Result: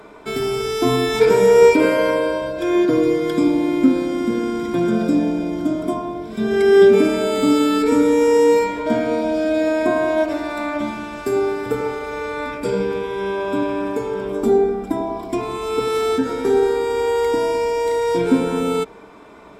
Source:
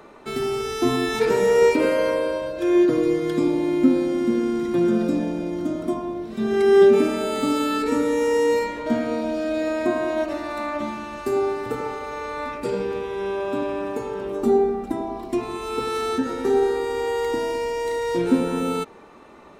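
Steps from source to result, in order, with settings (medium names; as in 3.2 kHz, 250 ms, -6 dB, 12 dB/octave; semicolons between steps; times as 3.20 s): rippled EQ curve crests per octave 1.7, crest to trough 8 dB; trim +3.5 dB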